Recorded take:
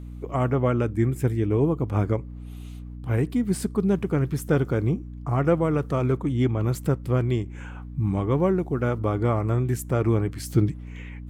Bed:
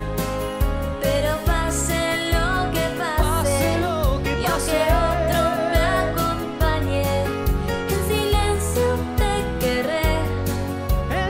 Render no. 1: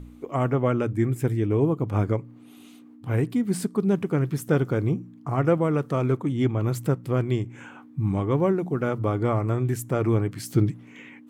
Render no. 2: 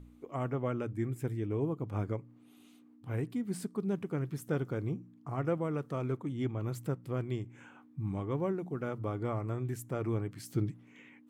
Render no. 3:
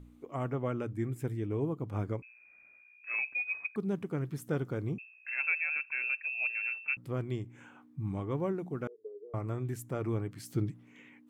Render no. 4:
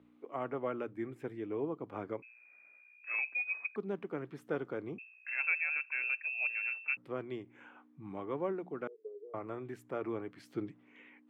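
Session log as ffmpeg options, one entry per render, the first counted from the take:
-af "bandreject=f=60:t=h:w=4,bandreject=f=120:t=h:w=4,bandreject=f=180:t=h:w=4"
-af "volume=0.282"
-filter_complex "[0:a]asettb=1/sr,asplit=3[s0][s1][s2];[s0]atrim=end=2.224[s3];[s1]atrim=start=2.22:end=3.76,asetpts=PTS-STARTPTS,afade=t=in:d=0.004:c=qsin,afade=t=out:st=1.536:d=0.004:c=qsin,lowpass=f=2300:t=q:w=0.5098,lowpass=f=2300:t=q:w=0.6013,lowpass=f=2300:t=q:w=0.9,lowpass=f=2300:t=q:w=2.563,afreqshift=-2700[s4];[s2]atrim=start=3.756[s5];[s3][s4]acrossfade=d=0.004:c1=hsin:c2=qsin[s6];[s6][s5]acrossfade=d=0.004:c1=qsin:c2=hsin,asettb=1/sr,asplit=3[s7][s8][s9];[s7]atrim=end=4.984[s10];[s8]atrim=start=4.98:end=6.97,asetpts=PTS-STARTPTS,afade=t=in:d=0.004:c=qsin,afade=t=out:st=1.986:d=0.004:c=qsin,lowpass=f=2400:t=q:w=0.5098,lowpass=f=2400:t=q:w=0.6013,lowpass=f=2400:t=q:w=0.9,lowpass=f=2400:t=q:w=2.563,afreqshift=-2800[s11];[s9]atrim=start=6.966[s12];[s10][s11]acrossfade=d=0.004:c1=hsin:c2=qsin[s13];[s13][s12]acrossfade=d=0.004:c1=qsin:c2=hsin,asettb=1/sr,asplit=3[s14][s15][s16];[s14]atrim=end=8.874[s17];[s15]atrim=start=8.87:end=9.34,asetpts=PTS-STARTPTS,afade=t=in:d=0.004:c=qsin,afade=t=out:st=0.466:d=0.004:c=qsin,asuperpass=centerf=430:order=4:qfactor=7.3[s18];[s16]atrim=start=9.336[s19];[s17][s18]acrossfade=d=0.004:c1=hsin:c2=qsin[s20];[s20][s19]acrossfade=d=0.004:c1=qsin:c2=hsin"
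-filter_complex "[0:a]highpass=150,acrossover=split=280 3700:gain=0.251 1 0.1[s0][s1][s2];[s0][s1][s2]amix=inputs=3:normalize=0"

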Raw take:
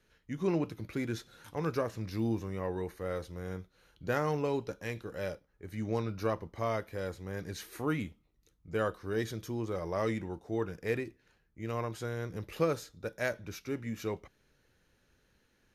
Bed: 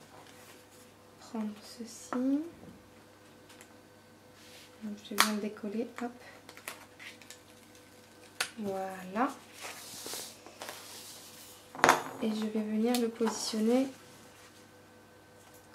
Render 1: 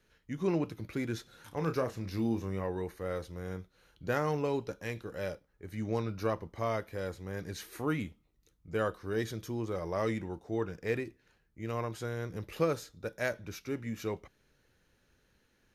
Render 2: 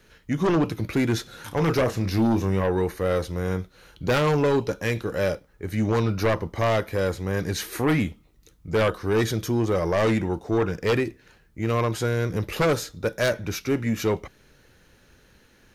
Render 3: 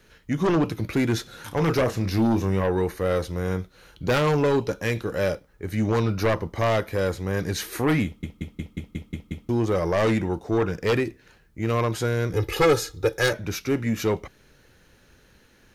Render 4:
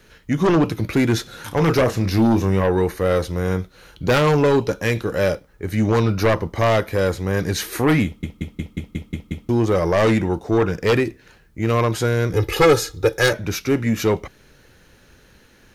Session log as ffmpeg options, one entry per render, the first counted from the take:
-filter_complex "[0:a]asettb=1/sr,asplit=3[s0][s1][s2];[s0]atrim=end=1.484[s3];[s1]atrim=start=1.48:end=2.64,asetpts=PTS-STARTPTS,afade=t=in:d=0.004:c=qsin,afade=t=out:st=1.156:d=0.004:c=qsin,asplit=2[s4][s5];[s5]adelay=31,volume=0.355[s6];[s4][s6]amix=inputs=2:normalize=0,atrim=end_sample=51156[s7];[s2]atrim=start=2.636[s8];[s3][s7]acrossfade=d=0.004:c1=hsin:c2=qsin[s9];[s9][s8]acrossfade=d=0.004:c1=qsin:c2=hsin,asettb=1/sr,asplit=3[s10][s11][s12];[s10]atrim=end=10.434[s13];[s11]atrim=start=10.43:end=10.94,asetpts=PTS-STARTPTS,afade=t=in:d=0.004:c=qsin,afade=t=out:st=0.506:d=0.004:c=qsin,equalizer=f=11000:w=4.3:g=-12[s14];[s12]atrim=start=10.936[s15];[s13][s14]acrossfade=d=0.004:c1=hsin:c2=qsin[s16];[s16][s15]acrossfade=d=0.004:c1=qsin:c2=hsin"
-af "aeval=exprs='0.15*sin(PI/2*3.16*val(0)/0.15)':c=same"
-filter_complex "[0:a]asettb=1/sr,asplit=3[s0][s1][s2];[s0]atrim=end=12.334[s3];[s1]atrim=start=12.33:end=13.33,asetpts=PTS-STARTPTS,afade=t=in:d=0.004:c=qsin,afade=t=out:st=0.996:d=0.004:c=qsin,aecho=1:1:2.4:0.94,atrim=end_sample=44100[s4];[s2]atrim=start=13.326[s5];[s3][s4]acrossfade=d=0.004:c1=hsin:c2=qsin[s6];[s6][s5]acrossfade=d=0.004:c1=qsin:c2=hsin,asplit=9[s7][s8][s9][s10][s11][s12][s13][s14][s15];[s7]atrim=end=8.232[s16];[s8]atrim=start=8.048:end=8.232[s17];[s9]atrim=start=8.048:end=8.232[s18];[s10]atrim=start=8.048:end=8.232[s19];[s11]atrim=start=8.048:end=8.232[s20];[s12]atrim=start=8.048:end=8.232[s21];[s13]atrim=start=8.048:end=8.232[s22];[s14]atrim=start=8.048:end=8.232[s23];[s15]atrim=start=9.488[s24];[s16][s17]acrossfade=d=0.004:c1=hsin:c2=hsin[s25];[s25][s18]acrossfade=d=0.004:c1=hsin:c2=hsin[s26];[s26][s19]acrossfade=d=0.004:c1=hsin:c2=hsin[s27];[s27][s20]acrossfade=d=0.004:c1=hsin:c2=hsin[s28];[s28][s21]acrossfade=d=0.004:c1=hsin:c2=hsin[s29];[s29][s22]acrossfade=d=0.004:c1=hsin:c2=hsin[s30];[s30][s23]acrossfade=d=0.004:c1=hsin:c2=hsin[s31];[s31][s24]acrossfade=d=0.004:c1=hsin:c2=hsin"
-af "volume=1.78"

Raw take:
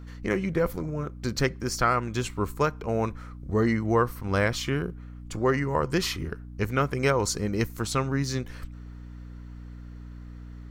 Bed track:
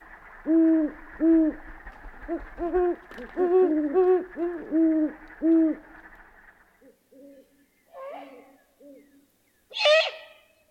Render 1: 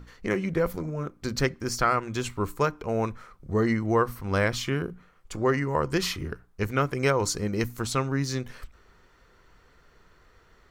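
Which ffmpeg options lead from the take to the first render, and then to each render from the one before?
-af "bandreject=f=60:t=h:w=6,bandreject=f=120:t=h:w=6,bandreject=f=180:t=h:w=6,bandreject=f=240:t=h:w=6,bandreject=f=300:t=h:w=6"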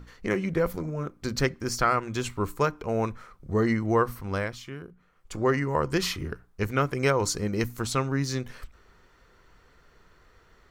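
-filter_complex "[0:a]asplit=3[s0][s1][s2];[s0]atrim=end=4.56,asetpts=PTS-STARTPTS,afade=t=out:st=4.15:d=0.41:silence=0.266073[s3];[s1]atrim=start=4.56:end=4.97,asetpts=PTS-STARTPTS,volume=0.266[s4];[s2]atrim=start=4.97,asetpts=PTS-STARTPTS,afade=t=in:d=0.41:silence=0.266073[s5];[s3][s4][s5]concat=n=3:v=0:a=1"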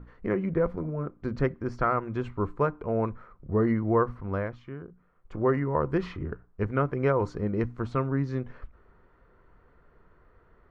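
-af "lowpass=1300,bandreject=f=800:w=19"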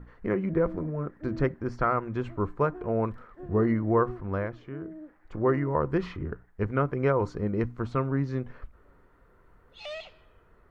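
-filter_complex "[1:a]volume=0.1[s0];[0:a][s0]amix=inputs=2:normalize=0"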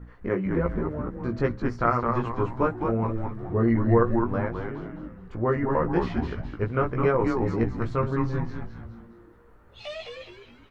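-filter_complex "[0:a]asplit=2[s0][s1];[s1]adelay=17,volume=0.708[s2];[s0][s2]amix=inputs=2:normalize=0,asplit=6[s3][s4][s5][s6][s7][s8];[s4]adelay=210,afreqshift=-120,volume=0.631[s9];[s5]adelay=420,afreqshift=-240,volume=0.266[s10];[s6]adelay=630,afreqshift=-360,volume=0.111[s11];[s7]adelay=840,afreqshift=-480,volume=0.0468[s12];[s8]adelay=1050,afreqshift=-600,volume=0.0197[s13];[s3][s9][s10][s11][s12][s13]amix=inputs=6:normalize=0"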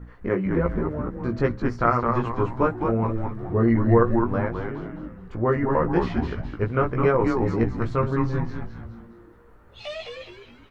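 -af "volume=1.33"

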